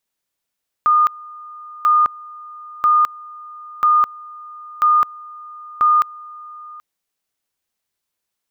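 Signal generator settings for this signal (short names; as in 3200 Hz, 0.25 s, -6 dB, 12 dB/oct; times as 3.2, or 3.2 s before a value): two-level tone 1220 Hz -10 dBFS, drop 23 dB, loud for 0.21 s, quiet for 0.78 s, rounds 6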